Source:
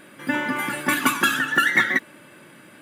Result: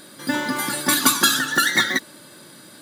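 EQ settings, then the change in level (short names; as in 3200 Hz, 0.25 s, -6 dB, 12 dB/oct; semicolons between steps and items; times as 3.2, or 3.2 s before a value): resonant high shelf 3300 Hz +8 dB, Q 3; +1.5 dB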